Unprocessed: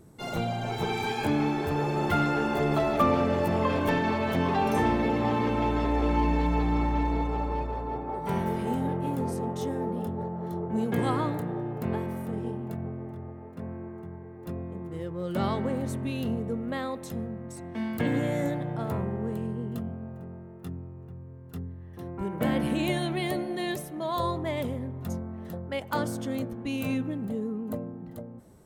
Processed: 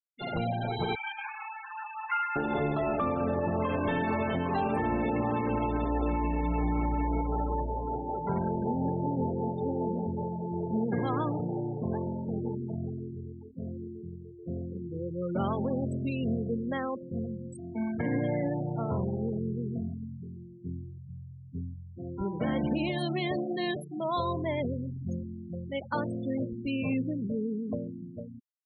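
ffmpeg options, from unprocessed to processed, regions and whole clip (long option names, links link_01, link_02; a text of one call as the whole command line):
ffmpeg -i in.wav -filter_complex "[0:a]asettb=1/sr,asplit=3[link_01][link_02][link_03];[link_01]atrim=end=0.954[link_04];[link_02]atrim=start=0.95:end=2.36,asetpts=PTS-STARTPTS,afade=type=in:duration=0.004:curve=qsin,afade=type=out:start_time=1.406:duration=0.004:curve=qsin,aeval=exprs='sgn(val(0))*max(abs(val(0))-0.00562,0)':channel_layout=same,asuperpass=centerf=1700:order=12:qfactor=0.74[link_05];[link_03]atrim=start=2.356[link_06];[link_04][link_05]acrossfade=duration=0.004:curve1=hsin:curve2=qsin[link_07];[link_07][link_06]acrossfade=duration=0.004:curve1=qsin:curve2=hsin,asettb=1/sr,asplit=3[link_08][link_09][link_10];[link_08]atrim=end=24.744[link_11];[link_09]atrim=start=24.74:end=25.81,asetpts=PTS-STARTPTS,afade=type=in:duration=0.004:curve=qsin,afade=type=out:start_time=1.066:duration=0.004:curve=qsin,equalizer=frequency=1100:width_type=o:width=1.6:gain=-8.5,asplit=2[link_12][link_13];[link_13]adelay=29,volume=-13dB[link_14];[link_12][link_14]amix=inputs=2:normalize=0,atrim=end_sample=47187[link_15];[link_10]atrim=start=25.806[link_16];[link_11][link_15]acrossfade=duration=0.004:curve1=hsin:curve2=qsin[link_17];[link_17][link_16]acrossfade=duration=0.004:curve1=qsin:curve2=hsin,afftfilt=real='re*gte(hypot(re,im),0.0316)':imag='im*gte(hypot(re,im),0.0316)':win_size=1024:overlap=0.75,alimiter=limit=-20.5dB:level=0:latency=1:release=110,highshelf=frequency=6100:gain=7.5" out.wav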